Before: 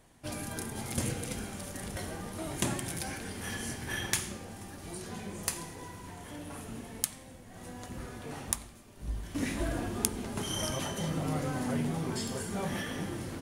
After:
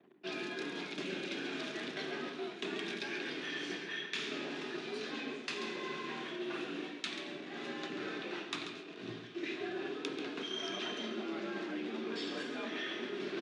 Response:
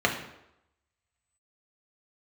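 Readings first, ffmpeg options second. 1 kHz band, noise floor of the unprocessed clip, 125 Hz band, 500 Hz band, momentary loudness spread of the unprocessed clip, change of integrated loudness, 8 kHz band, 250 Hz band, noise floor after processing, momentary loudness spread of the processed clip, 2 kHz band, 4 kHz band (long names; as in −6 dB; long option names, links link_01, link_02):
−4.5 dB, −51 dBFS, −18.0 dB, 0.0 dB, 12 LU, −4.0 dB, −18.5 dB, −4.0 dB, −48 dBFS, 3 LU, +1.0 dB, +1.0 dB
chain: -filter_complex "[0:a]anlmdn=0.0001,highpass=180,equalizer=frequency=310:width_type=q:width=4:gain=9,equalizer=frequency=460:width_type=q:width=4:gain=-7,equalizer=frequency=810:width_type=q:width=4:gain=-8,equalizer=frequency=1500:width_type=q:width=4:gain=5,equalizer=frequency=2500:width_type=q:width=4:gain=8,equalizer=frequency=3600:width_type=q:width=4:gain=8,lowpass=frequency=4900:width=0.5412,lowpass=frequency=4900:width=1.3066,bandreject=frequency=50:width_type=h:width=6,bandreject=frequency=100:width_type=h:width=6,bandreject=frequency=150:width_type=h:width=6,bandreject=frequency=200:width_type=h:width=6,bandreject=frequency=250:width_type=h:width=6,bandreject=frequency=300:width_type=h:width=6,areverse,acompressor=threshold=-44dB:ratio=10,areverse,afreqshift=62,asplit=2[link_01][link_02];[link_02]aecho=0:1:137:0.299[link_03];[link_01][link_03]amix=inputs=2:normalize=0,volume=7dB"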